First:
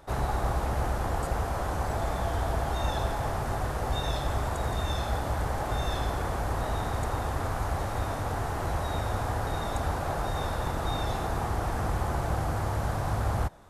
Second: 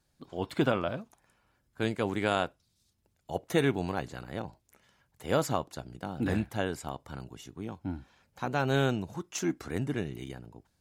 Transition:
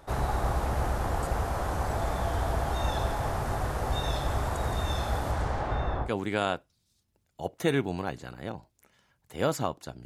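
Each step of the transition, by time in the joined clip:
first
0:05.31–0:06.10: low-pass filter 11,000 Hz → 1,000 Hz
0:06.06: continue with second from 0:01.96, crossfade 0.08 s

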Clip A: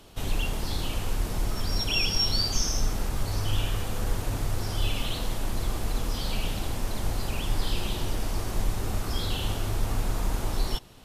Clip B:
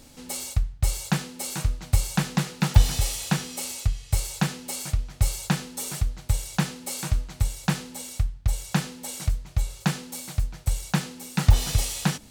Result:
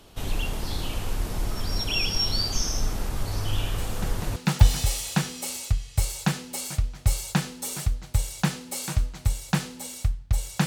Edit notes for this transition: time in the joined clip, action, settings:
clip A
0:03.76: mix in clip B from 0:01.91 0.60 s −12.5 dB
0:04.36: continue with clip B from 0:02.51

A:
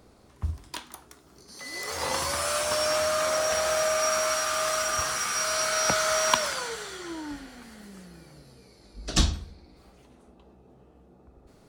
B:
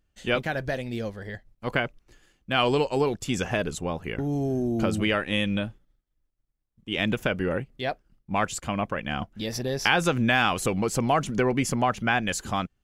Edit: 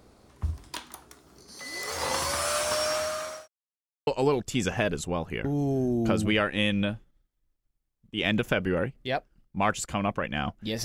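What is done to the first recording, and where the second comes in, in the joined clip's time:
A
0:02.45–0:03.48: fade out equal-power
0:03.48–0:04.07: silence
0:04.07: continue with B from 0:02.81

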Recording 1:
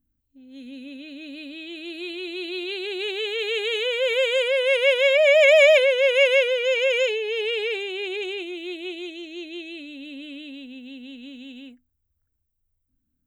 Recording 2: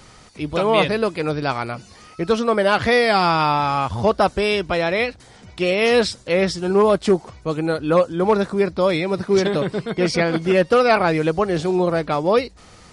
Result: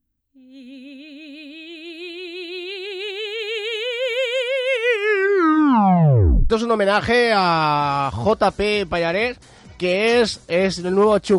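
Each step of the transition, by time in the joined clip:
recording 1
0:04.68: tape stop 1.82 s
0:06.50: continue with recording 2 from 0:02.28

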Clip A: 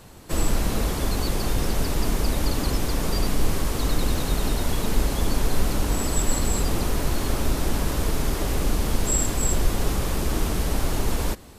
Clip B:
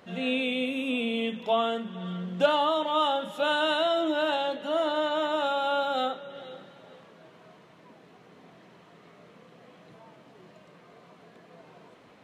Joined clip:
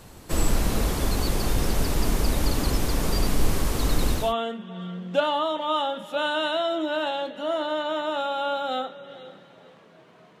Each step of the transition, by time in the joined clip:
clip A
0:04.19: continue with clip B from 0:01.45, crossfade 0.30 s equal-power

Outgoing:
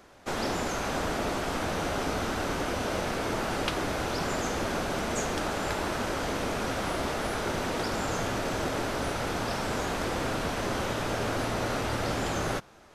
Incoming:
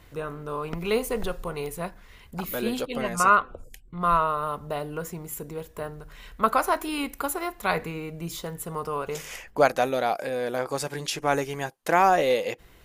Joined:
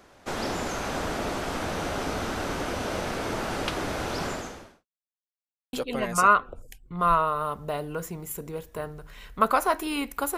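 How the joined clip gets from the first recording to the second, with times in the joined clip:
outgoing
0:04.26–0:04.86: fade out quadratic
0:04.86–0:05.73: silence
0:05.73: continue with incoming from 0:02.75

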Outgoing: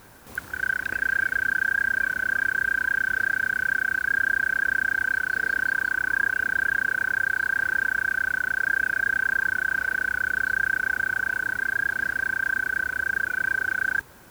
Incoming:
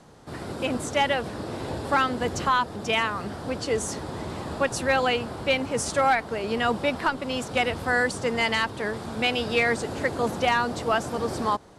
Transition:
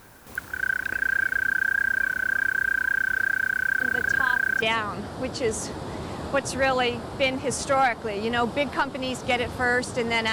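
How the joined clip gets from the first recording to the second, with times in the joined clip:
outgoing
0:03.80: mix in incoming from 0:02.07 0.82 s −8.5 dB
0:04.62: continue with incoming from 0:02.89

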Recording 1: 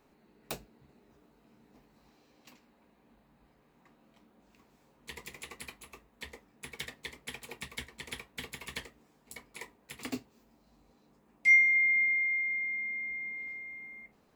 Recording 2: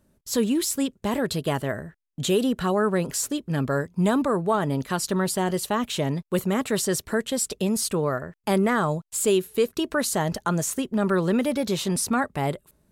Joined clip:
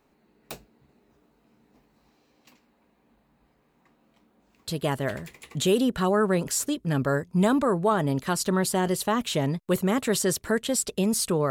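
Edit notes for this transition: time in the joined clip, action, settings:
recording 1
0:05.14: continue with recording 2 from 0:01.77, crossfade 0.94 s logarithmic

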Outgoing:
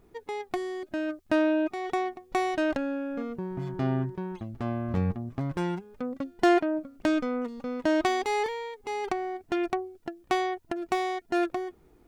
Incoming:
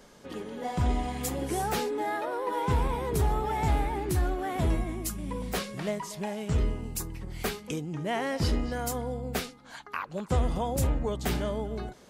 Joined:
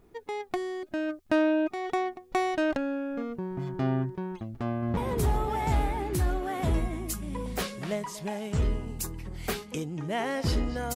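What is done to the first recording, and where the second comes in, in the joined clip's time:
outgoing
0:04.65–0:04.97: delay throw 170 ms, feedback 70%, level −8.5 dB
0:04.97: continue with incoming from 0:02.93

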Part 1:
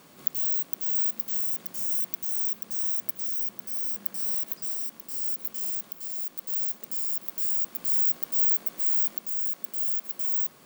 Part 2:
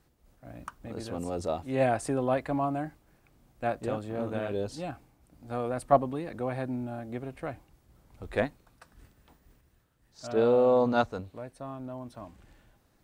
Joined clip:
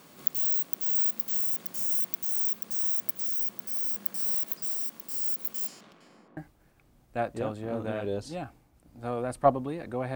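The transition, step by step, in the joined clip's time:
part 1
0:05.66–0:06.37: low-pass filter 6,800 Hz → 1,000 Hz
0:06.37: continue with part 2 from 0:02.84

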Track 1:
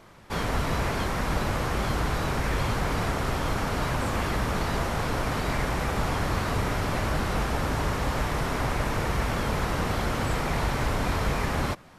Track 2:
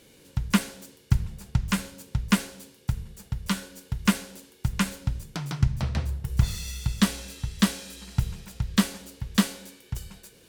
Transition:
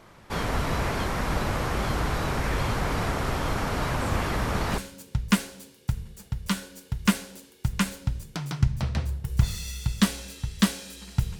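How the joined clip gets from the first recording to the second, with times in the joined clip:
track 1
0:04.01: mix in track 2 from 0:01.01 0.77 s −11 dB
0:04.78: continue with track 2 from 0:01.78

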